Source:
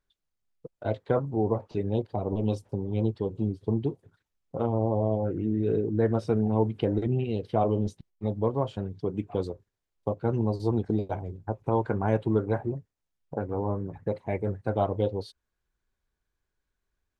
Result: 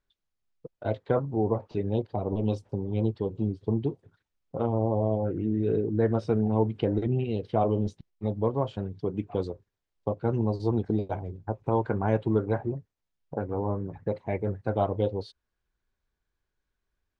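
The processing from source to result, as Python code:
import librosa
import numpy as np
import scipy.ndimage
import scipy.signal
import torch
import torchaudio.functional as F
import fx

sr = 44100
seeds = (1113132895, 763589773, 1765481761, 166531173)

y = scipy.signal.sosfilt(scipy.signal.butter(2, 6000.0, 'lowpass', fs=sr, output='sos'), x)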